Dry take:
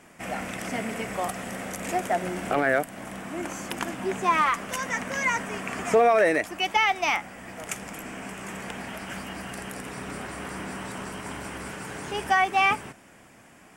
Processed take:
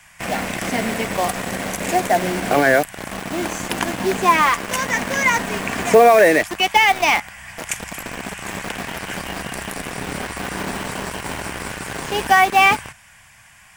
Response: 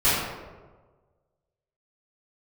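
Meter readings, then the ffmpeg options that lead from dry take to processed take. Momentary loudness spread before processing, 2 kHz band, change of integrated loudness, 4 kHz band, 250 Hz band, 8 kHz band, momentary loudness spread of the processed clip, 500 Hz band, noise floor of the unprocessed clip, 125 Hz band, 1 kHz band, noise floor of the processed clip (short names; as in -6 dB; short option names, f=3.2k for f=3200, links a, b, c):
15 LU, +8.5 dB, +8.5 dB, +9.5 dB, +8.0 dB, +10.0 dB, 15 LU, +8.5 dB, -52 dBFS, +8.5 dB, +8.0 dB, -48 dBFS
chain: -filter_complex "[0:a]bandreject=f=1.3k:w=7.3,acrossover=split=130|910|2900[a][b][c][d];[b]acrusher=bits=5:mix=0:aa=0.000001[e];[a][e][c][d]amix=inputs=4:normalize=0,volume=8.5dB"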